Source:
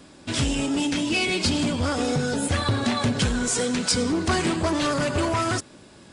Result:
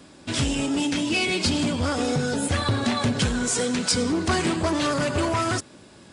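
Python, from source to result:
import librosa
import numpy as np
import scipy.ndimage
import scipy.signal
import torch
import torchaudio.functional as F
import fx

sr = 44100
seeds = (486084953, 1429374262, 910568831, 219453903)

y = scipy.signal.sosfilt(scipy.signal.butter(2, 47.0, 'highpass', fs=sr, output='sos'), x)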